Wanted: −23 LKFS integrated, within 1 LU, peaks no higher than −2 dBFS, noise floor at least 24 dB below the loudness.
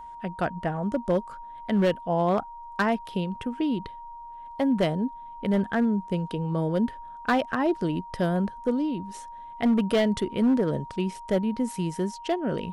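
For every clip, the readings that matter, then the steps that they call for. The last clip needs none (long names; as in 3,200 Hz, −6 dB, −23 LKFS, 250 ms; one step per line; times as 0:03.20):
share of clipped samples 1.0%; peaks flattened at −17.0 dBFS; interfering tone 940 Hz; level of the tone −39 dBFS; integrated loudness −27.0 LKFS; sample peak −17.0 dBFS; target loudness −23.0 LKFS
→ clipped peaks rebuilt −17 dBFS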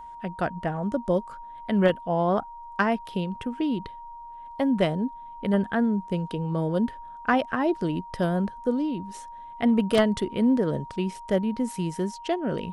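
share of clipped samples 0.0%; interfering tone 940 Hz; level of the tone −39 dBFS
→ notch filter 940 Hz, Q 30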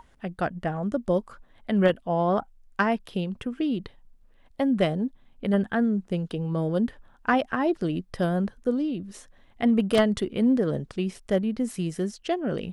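interfering tone none found; integrated loudness −26.5 LKFS; sample peak −8.0 dBFS; target loudness −23.0 LKFS
→ level +3.5 dB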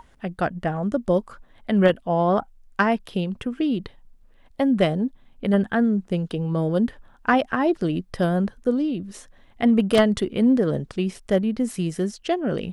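integrated loudness −23.0 LKFS; sample peak −4.5 dBFS; background noise floor −55 dBFS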